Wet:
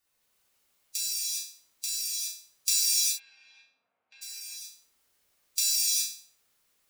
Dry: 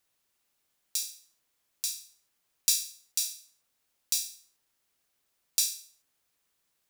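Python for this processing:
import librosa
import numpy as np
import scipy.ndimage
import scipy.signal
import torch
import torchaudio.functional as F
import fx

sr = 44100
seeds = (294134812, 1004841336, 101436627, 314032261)

y = fx.spec_quant(x, sr, step_db=15)
y = fx.cabinet(y, sr, low_hz=120.0, low_slope=24, high_hz=2100.0, hz=(150.0, 350.0, 690.0, 1900.0), db=(-8, -6, 7, -6), at=(2.75, 4.21), fade=0.02)
y = fx.rev_gated(y, sr, seeds[0], gate_ms=440, shape='flat', drr_db=-8.0)
y = y * librosa.db_to_amplitude(-2.5)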